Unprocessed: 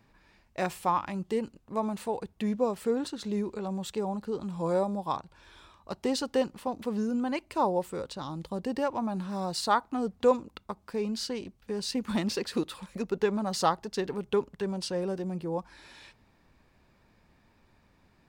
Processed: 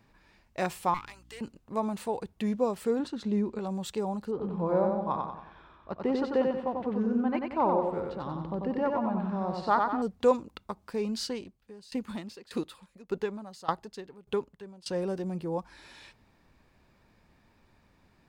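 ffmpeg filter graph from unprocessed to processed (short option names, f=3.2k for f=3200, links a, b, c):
-filter_complex "[0:a]asettb=1/sr,asplit=3[a][b][c];[a]atrim=end=0.944[d];[b]atrim=start=0.94:end=1.41,asetpts=PTS-STARTPTS,afade=t=in:d=0.004:c=qsin,afade=t=out:st=0.466:d=0.004:c=qsin,highpass=1.3k,aeval=exprs='clip(val(0),-1,0.00668)':c=same,aeval=exprs='val(0)+0.00141*(sin(2*PI*60*n/s)+sin(2*PI*2*60*n/s)/2+sin(2*PI*3*60*n/s)/3+sin(2*PI*4*60*n/s)/4+sin(2*PI*5*60*n/s)/5)':c=same[e];[c]atrim=start=1.406[f];[d][e]acrossfade=d=0.004:c1=hsin:c2=qsin[g];[g][f]acrossfade=d=0.004:c1=qsin:c2=hsin,asettb=1/sr,asplit=3[h][i][j];[h]atrim=end=2.994[k];[i]atrim=start=2.99:end=3.59,asetpts=PTS-STARTPTS,afade=t=in:d=0.004:c=qsin,afade=t=out:st=0.596:d=0.004:c=qsin,lowpass=f=2.8k:p=1,equalizer=f=230:t=o:w=0.31:g=7[l];[j]atrim=start=3.586[m];[k][l]acrossfade=d=0.004:c1=hsin:c2=qsin[n];[n][m]acrossfade=d=0.004:c1=qsin:c2=hsin,asettb=1/sr,asplit=3[o][p][q];[o]atrim=end=4.314[r];[p]atrim=start=4.31:end=10.02,asetpts=PTS-STARTPTS,afade=t=in:d=0.004:c=qsin,afade=t=out:st=5.706:d=0.004:c=qsin,lowpass=1.9k,aecho=1:1:92|184|276|368|460|552:0.668|0.307|0.141|0.0651|0.0299|0.0138,atrim=end_sample=251811[s];[q]atrim=start=10.016[t];[r][s]acrossfade=d=0.004:c1=hsin:c2=qsin[u];[u][t]acrossfade=d=0.004:c1=qsin:c2=hsin,asettb=1/sr,asplit=3[v][w][x];[v]atrim=end=11.334[y];[w]atrim=start=11.33:end=14.87,asetpts=PTS-STARTPTS,afade=t=in:d=0.004:c=qsin,afade=t=out:st=3.536:d=0.004:c=qsin,bandreject=f=5.7k:w=16,aeval=exprs='val(0)*pow(10,-21*if(lt(mod(1.7*n/s,1),2*abs(1.7)/1000),1-mod(1.7*n/s,1)/(2*abs(1.7)/1000),(mod(1.7*n/s,1)-2*abs(1.7)/1000)/(1-2*abs(1.7)/1000))/20)':c=same[z];[x]atrim=start=14.866[aa];[y][z]acrossfade=d=0.004:c1=hsin:c2=qsin[ab];[ab][aa]acrossfade=d=0.004:c1=qsin:c2=hsin"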